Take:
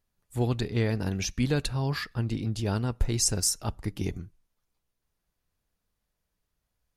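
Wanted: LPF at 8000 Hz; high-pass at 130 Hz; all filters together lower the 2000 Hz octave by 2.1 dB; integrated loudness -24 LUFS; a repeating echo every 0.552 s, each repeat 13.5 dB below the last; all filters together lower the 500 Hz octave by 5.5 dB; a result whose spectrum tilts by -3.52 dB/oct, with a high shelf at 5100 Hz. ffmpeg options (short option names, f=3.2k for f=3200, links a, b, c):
-af "highpass=130,lowpass=8k,equalizer=f=500:t=o:g=-7,equalizer=f=2k:t=o:g=-3,highshelf=f=5.1k:g=5,aecho=1:1:552|1104:0.211|0.0444,volume=6dB"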